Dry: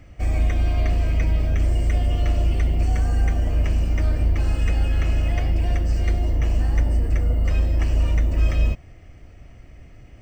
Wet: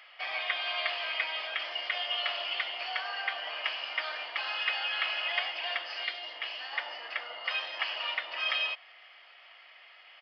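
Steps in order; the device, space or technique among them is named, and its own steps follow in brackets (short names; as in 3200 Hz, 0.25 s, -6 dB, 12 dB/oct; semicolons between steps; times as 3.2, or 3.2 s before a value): musical greeting card (downsampling 11025 Hz; HPF 890 Hz 24 dB/oct; bell 3200 Hz +9.5 dB 0.36 oct); 6.03–6.73 dynamic EQ 980 Hz, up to -7 dB, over -52 dBFS, Q 0.72; gain +5 dB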